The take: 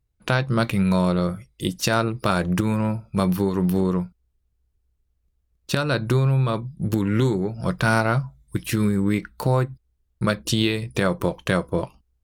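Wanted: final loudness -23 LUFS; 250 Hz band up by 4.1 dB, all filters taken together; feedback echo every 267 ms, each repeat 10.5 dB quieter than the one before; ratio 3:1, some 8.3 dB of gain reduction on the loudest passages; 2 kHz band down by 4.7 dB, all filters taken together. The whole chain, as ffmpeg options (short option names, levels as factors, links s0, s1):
-af "equalizer=f=250:t=o:g=6,equalizer=f=2000:t=o:g=-7.5,acompressor=threshold=0.0562:ratio=3,aecho=1:1:267|534|801:0.299|0.0896|0.0269,volume=1.78"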